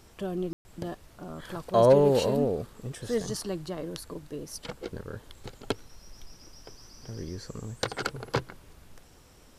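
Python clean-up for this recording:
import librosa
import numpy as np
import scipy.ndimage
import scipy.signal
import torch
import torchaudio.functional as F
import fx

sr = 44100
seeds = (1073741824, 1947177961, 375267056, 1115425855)

y = fx.fix_ambience(x, sr, seeds[0], print_start_s=9.03, print_end_s=9.53, start_s=0.53, end_s=0.65)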